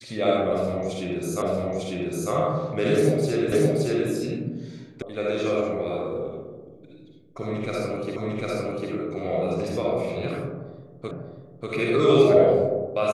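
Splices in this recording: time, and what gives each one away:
1.42 repeat of the last 0.9 s
3.52 repeat of the last 0.57 s
5.02 sound cut off
8.16 repeat of the last 0.75 s
11.11 repeat of the last 0.59 s

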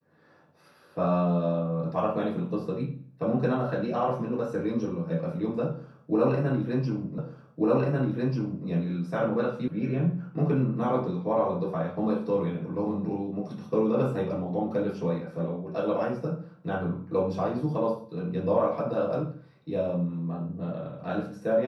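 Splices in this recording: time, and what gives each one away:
7.18 repeat of the last 1.49 s
9.68 sound cut off

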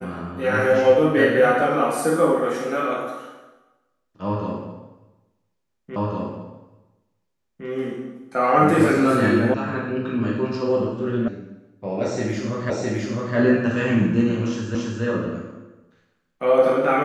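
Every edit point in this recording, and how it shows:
5.96 repeat of the last 1.71 s
9.54 sound cut off
11.28 sound cut off
12.7 repeat of the last 0.66 s
14.75 repeat of the last 0.28 s

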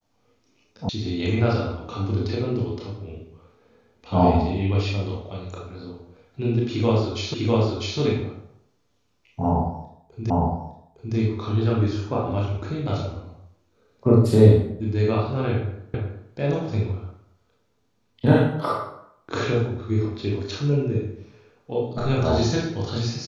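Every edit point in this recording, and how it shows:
0.89 sound cut off
7.34 repeat of the last 0.65 s
10.3 repeat of the last 0.86 s
15.94 repeat of the last 0.37 s

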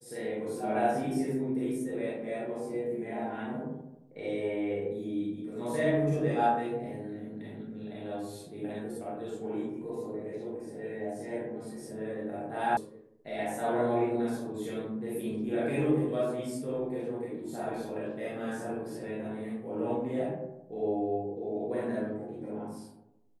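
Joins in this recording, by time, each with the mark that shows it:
12.77 sound cut off

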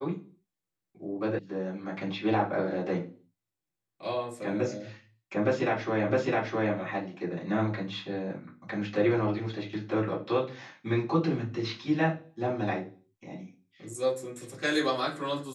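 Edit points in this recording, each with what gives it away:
1.39 sound cut off
6.1 repeat of the last 0.66 s

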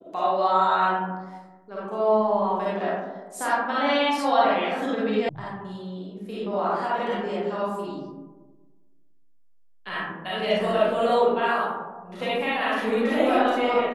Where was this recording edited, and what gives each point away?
5.29 sound cut off

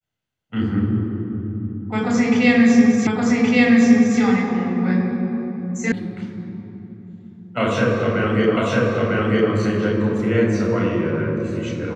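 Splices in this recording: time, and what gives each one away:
3.07 repeat of the last 1.12 s
5.92 sound cut off
8.57 repeat of the last 0.95 s

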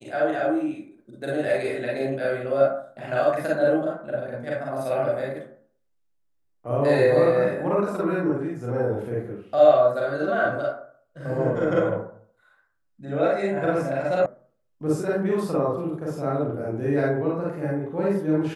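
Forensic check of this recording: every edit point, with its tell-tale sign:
14.26 sound cut off

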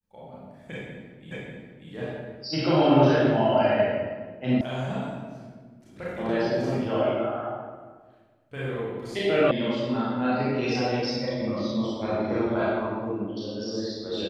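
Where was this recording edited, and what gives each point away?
1.31 repeat of the last 0.59 s
4.61 sound cut off
9.51 sound cut off

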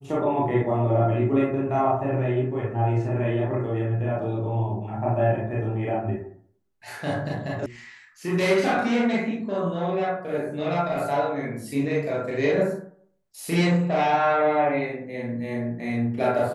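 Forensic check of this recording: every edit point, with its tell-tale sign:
7.66 sound cut off

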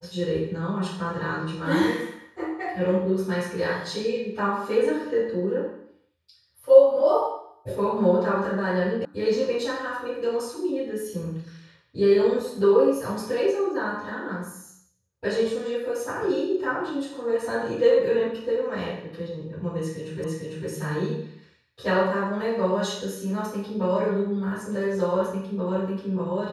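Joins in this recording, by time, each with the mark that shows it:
9.05 sound cut off
20.24 repeat of the last 0.45 s

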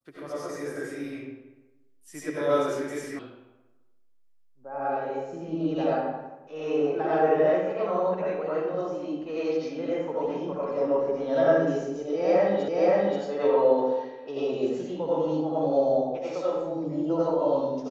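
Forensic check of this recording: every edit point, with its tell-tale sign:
3.19 sound cut off
12.68 repeat of the last 0.53 s

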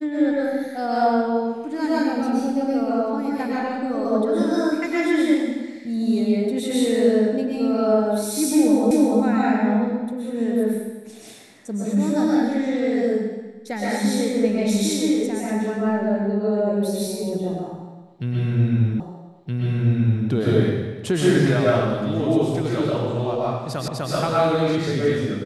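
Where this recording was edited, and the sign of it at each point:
8.91 repeat of the last 0.29 s
19 repeat of the last 1.27 s
23.88 repeat of the last 0.25 s

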